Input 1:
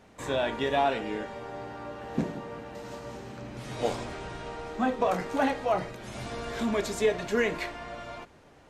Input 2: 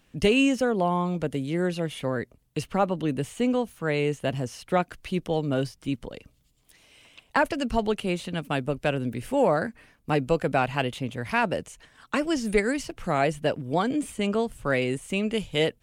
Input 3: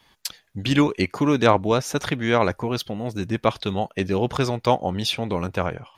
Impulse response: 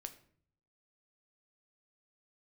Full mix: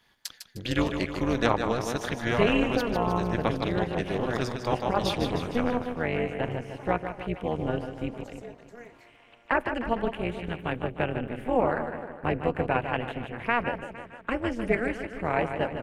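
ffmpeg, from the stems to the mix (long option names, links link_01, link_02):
-filter_complex "[0:a]highpass=frequency=210:width=0.5412,highpass=frequency=210:width=1.3066,equalizer=frequency=3100:width_type=o:width=0.72:gain=-12,adelay=1400,volume=-15.5dB[link_01];[1:a]highshelf=frequency=3300:width_type=q:width=1.5:gain=-13.5,bandreject=frequency=1300:width=14,adelay=2150,volume=-2dB,asplit=3[link_02][link_03][link_04];[link_03]volume=-6.5dB[link_05];[link_04]volume=-6.5dB[link_06];[2:a]equalizer=frequency=1700:width=7.9:gain=7,volume=-4dB,asplit=2[link_07][link_08];[link_08]volume=-7.5dB[link_09];[3:a]atrim=start_sample=2205[link_10];[link_05][link_10]afir=irnorm=-1:irlink=0[link_11];[link_06][link_09]amix=inputs=2:normalize=0,aecho=0:1:153|306|459|612|765|918|1071|1224:1|0.56|0.314|0.176|0.0983|0.0551|0.0308|0.0173[link_12];[link_01][link_02][link_07][link_11][link_12]amix=inputs=5:normalize=0,tremolo=f=240:d=0.889"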